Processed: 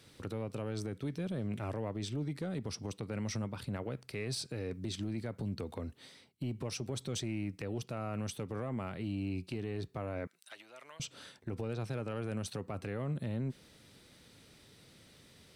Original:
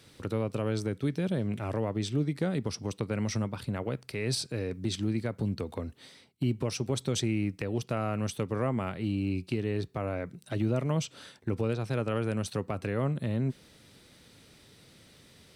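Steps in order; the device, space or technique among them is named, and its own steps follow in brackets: soft clipper into limiter (saturation -19.5 dBFS, distortion -22 dB; peak limiter -26.5 dBFS, peak gain reduction 5.5 dB); 10.27–11.00 s: high-pass 1.2 kHz 12 dB/octave; trim -3 dB

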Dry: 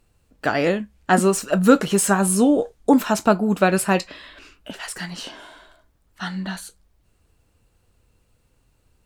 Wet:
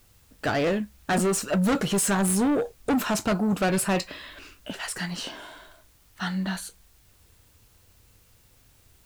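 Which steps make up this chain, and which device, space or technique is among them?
open-reel tape (saturation -20 dBFS, distortion -6 dB; peaking EQ 100 Hz +5 dB 1.01 oct; white noise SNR 34 dB)

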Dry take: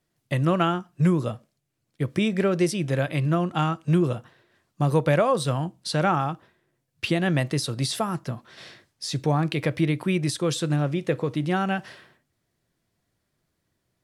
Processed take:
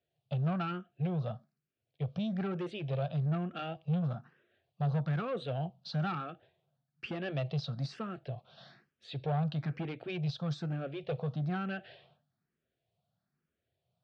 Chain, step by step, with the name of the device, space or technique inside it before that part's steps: barber-pole phaser into a guitar amplifier (barber-pole phaser +1.1 Hz; saturation -24.5 dBFS, distortion -11 dB; cabinet simulation 87–3900 Hz, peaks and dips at 150 Hz +4 dB, 310 Hz -10 dB, 700 Hz +6 dB, 1 kHz -9 dB, 2 kHz -8 dB); trim -4.5 dB

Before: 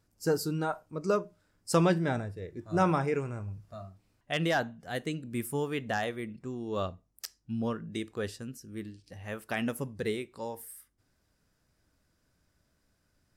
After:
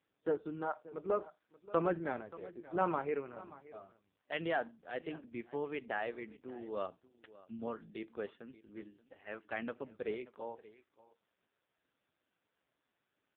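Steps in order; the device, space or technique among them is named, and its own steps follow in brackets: 0.81–2.10 s: low-pass that closes with the level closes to 2.1 kHz, closed at -20.5 dBFS; satellite phone (band-pass 310–3300 Hz; delay 580 ms -18.5 dB; trim -4 dB; AMR-NB 5.15 kbps 8 kHz)

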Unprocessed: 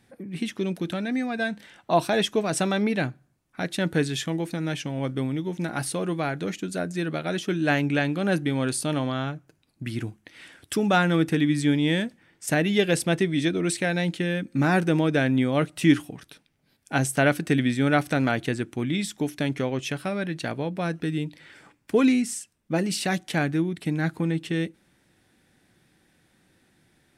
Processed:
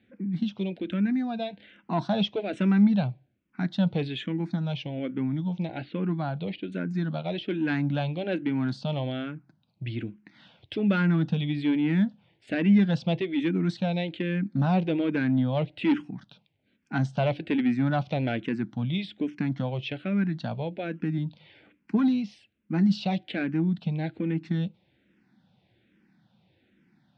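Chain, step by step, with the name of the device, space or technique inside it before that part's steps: 5.66–6.72 s: Chebyshev low-pass 4.7 kHz, order 5; barber-pole phaser into a guitar amplifier (barber-pole phaser -1.2 Hz; saturation -17.5 dBFS, distortion -17 dB; cabinet simulation 78–3900 Hz, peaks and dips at 120 Hz +4 dB, 200 Hz +9 dB, 420 Hz -4 dB, 1.2 kHz -6 dB, 1.8 kHz -5 dB)

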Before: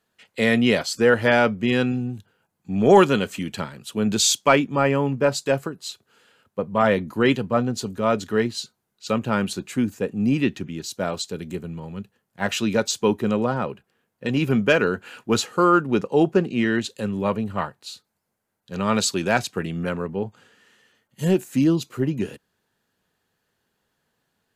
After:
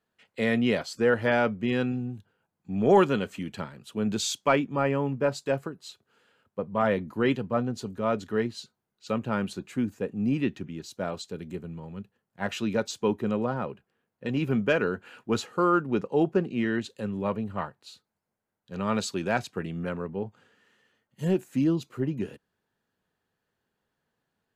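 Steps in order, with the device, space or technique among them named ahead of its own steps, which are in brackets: behind a face mask (treble shelf 3.4 kHz -8 dB); trim -5.5 dB

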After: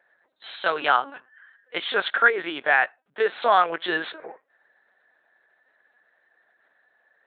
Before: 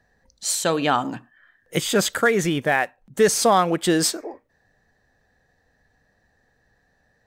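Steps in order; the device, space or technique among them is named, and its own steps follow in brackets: talking toy (LPC vocoder at 8 kHz pitch kept; high-pass 590 Hz 12 dB/octave; peaking EQ 1.5 kHz +7 dB 0.42 oct)

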